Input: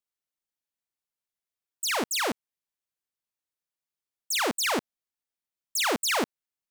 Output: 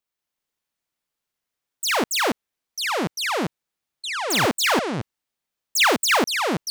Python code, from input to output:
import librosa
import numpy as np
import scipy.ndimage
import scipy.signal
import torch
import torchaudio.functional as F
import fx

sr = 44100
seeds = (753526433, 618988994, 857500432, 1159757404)

y = fx.echo_pitch(x, sr, ms=189, semitones=-6, count=2, db_per_echo=-3.0)
y = fx.peak_eq(y, sr, hz=9800.0, db=-4.0, octaves=1.7)
y = fx.band_squash(y, sr, depth_pct=100, at=(5.76, 6.17))
y = y * 10.0 ** (6.5 / 20.0)